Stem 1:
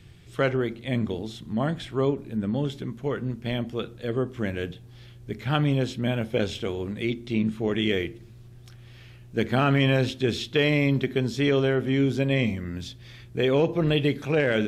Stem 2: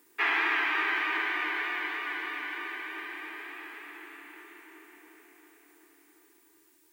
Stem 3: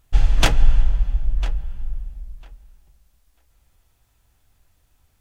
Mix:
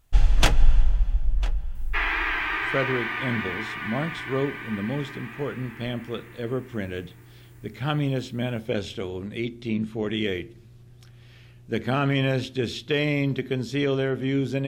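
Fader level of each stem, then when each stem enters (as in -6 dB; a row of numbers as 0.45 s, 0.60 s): -2.0 dB, +1.0 dB, -2.5 dB; 2.35 s, 1.75 s, 0.00 s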